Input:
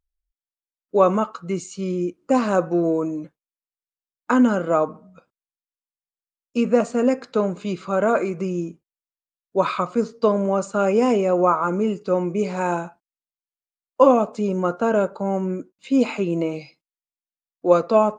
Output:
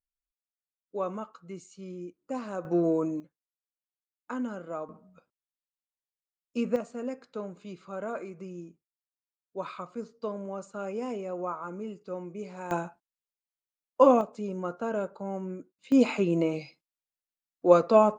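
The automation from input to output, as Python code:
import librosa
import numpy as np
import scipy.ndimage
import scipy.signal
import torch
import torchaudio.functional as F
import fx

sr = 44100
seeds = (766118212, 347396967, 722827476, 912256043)

y = fx.gain(x, sr, db=fx.steps((0.0, -16.0), (2.65, -5.0), (3.2, -17.0), (4.89, -9.0), (6.76, -16.0), (12.71, -5.0), (14.21, -11.5), (15.92, -3.0)))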